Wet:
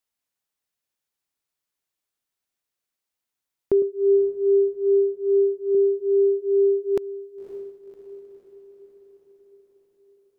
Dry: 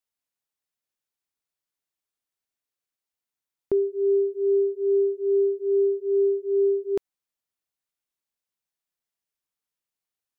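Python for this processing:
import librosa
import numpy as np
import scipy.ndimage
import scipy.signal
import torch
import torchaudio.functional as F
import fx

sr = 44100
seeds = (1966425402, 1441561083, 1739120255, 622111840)

y = fx.echo_diffused(x, sr, ms=554, feedback_pct=57, wet_db=-14)
y = fx.band_widen(y, sr, depth_pct=70, at=(3.82, 5.75))
y = y * librosa.db_to_amplitude(3.5)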